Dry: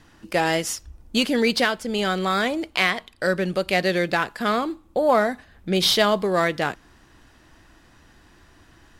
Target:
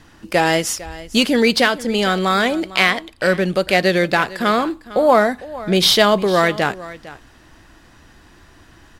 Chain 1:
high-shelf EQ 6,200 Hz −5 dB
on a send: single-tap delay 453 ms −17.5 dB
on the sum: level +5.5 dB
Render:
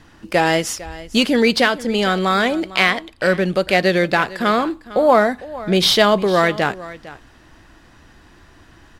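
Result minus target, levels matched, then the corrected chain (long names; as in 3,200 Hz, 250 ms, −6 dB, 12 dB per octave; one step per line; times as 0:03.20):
8,000 Hz band −2.5 dB
on a send: single-tap delay 453 ms −17.5 dB
on the sum: level +5.5 dB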